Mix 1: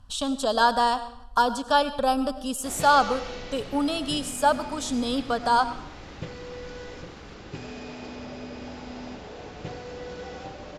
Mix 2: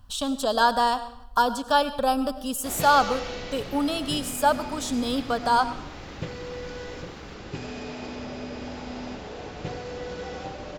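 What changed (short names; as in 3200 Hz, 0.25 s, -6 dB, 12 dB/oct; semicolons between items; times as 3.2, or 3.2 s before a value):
background: send on; master: remove LPF 11000 Hz 24 dB/oct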